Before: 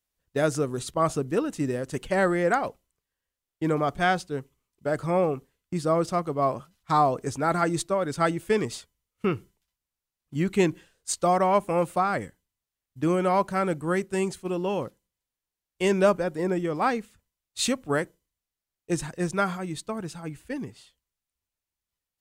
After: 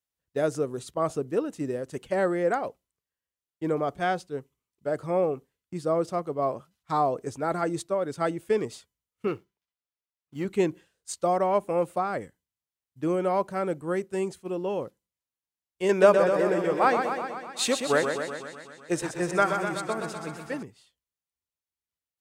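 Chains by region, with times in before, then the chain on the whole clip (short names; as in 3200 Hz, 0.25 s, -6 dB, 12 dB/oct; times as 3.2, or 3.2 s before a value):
9.27–10.45 median filter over 5 samples + low shelf 250 Hz -9 dB + sample leveller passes 1
15.89–20.63 EQ curve 230 Hz 0 dB, 1600 Hz +9 dB, 4700 Hz +6 dB + warbling echo 0.125 s, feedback 71%, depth 71 cents, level -6.5 dB
whole clip: HPF 62 Hz; dynamic EQ 480 Hz, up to +7 dB, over -35 dBFS, Q 0.9; gain -7 dB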